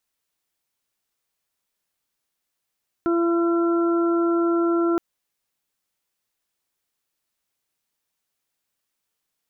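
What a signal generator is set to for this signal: steady additive tone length 1.92 s, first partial 339 Hz, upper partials -13/-19/-10 dB, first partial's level -18 dB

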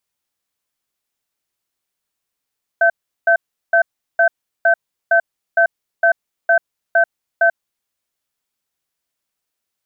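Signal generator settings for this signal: cadence 675 Hz, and 1.54 kHz, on 0.09 s, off 0.37 s, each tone -12 dBFS 5.06 s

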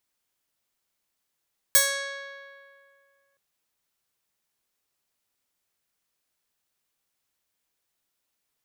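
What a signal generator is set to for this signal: plucked string C#5, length 1.62 s, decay 2.20 s, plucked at 0.44, bright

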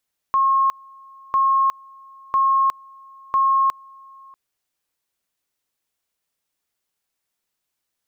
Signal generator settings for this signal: two-level tone 1.08 kHz -14 dBFS, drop 27.5 dB, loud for 0.36 s, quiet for 0.64 s, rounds 4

